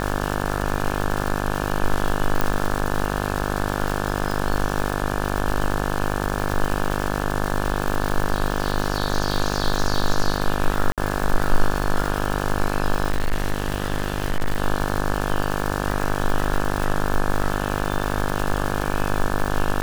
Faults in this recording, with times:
mains buzz 50 Hz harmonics 35 −25 dBFS
surface crackle 300 per second −23 dBFS
0:02.41: click
0:10.92–0:10.98: drop-out 57 ms
0:13.10–0:14.60: clipping −16 dBFS

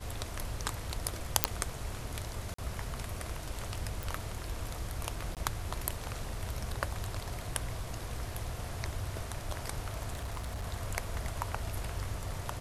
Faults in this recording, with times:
0:01.44: click −1 dBFS
0:02.54–0:02.58: drop-out 44 ms
0:04.03: click
0:05.35–0:05.37: drop-out 18 ms
0:10.13–0:10.64: clipping −33.5 dBFS

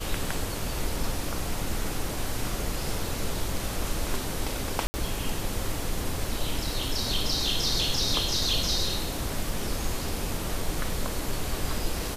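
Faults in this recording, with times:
0:04.87–0:04.94: drop-out 70 ms

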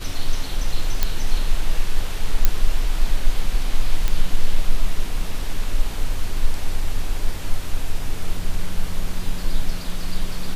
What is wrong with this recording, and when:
0:01.03: click −4 dBFS
0:02.45: click −1 dBFS
0:04.08: click −8 dBFS

